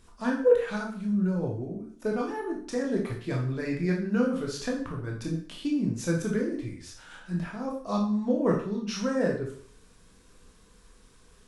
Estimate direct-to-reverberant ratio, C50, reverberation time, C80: -1.5 dB, 5.5 dB, 0.50 s, 10.5 dB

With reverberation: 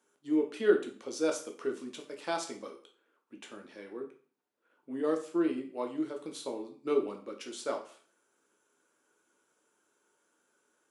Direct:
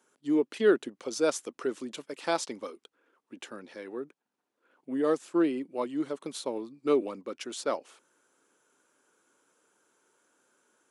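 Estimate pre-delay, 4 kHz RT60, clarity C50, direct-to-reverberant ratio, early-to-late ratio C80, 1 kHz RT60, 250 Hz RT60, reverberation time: 6 ms, 0.40 s, 10.5 dB, 2.5 dB, 15.0 dB, 0.45 s, 0.45 s, 0.45 s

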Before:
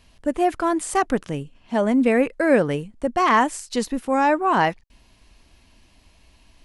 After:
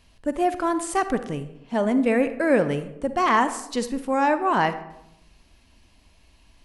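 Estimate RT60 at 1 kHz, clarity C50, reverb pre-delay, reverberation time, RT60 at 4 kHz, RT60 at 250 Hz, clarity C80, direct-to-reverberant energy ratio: 0.80 s, 12.0 dB, 39 ms, 0.80 s, 0.50 s, 1.1 s, 15.0 dB, 11.0 dB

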